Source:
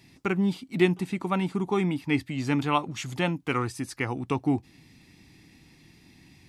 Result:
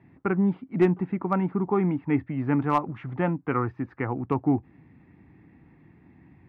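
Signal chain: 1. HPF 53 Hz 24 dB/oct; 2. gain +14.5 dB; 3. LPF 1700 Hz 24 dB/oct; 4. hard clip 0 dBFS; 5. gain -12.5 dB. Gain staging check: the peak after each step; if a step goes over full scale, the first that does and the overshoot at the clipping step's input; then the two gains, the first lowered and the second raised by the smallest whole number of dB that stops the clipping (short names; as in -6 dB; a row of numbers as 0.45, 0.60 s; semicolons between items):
-9.0, +5.5, +4.0, 0.0, -12.5 dBFS; step 2, 4.0 dB; step 2 +10.5 dB, step 5 -8.5 dB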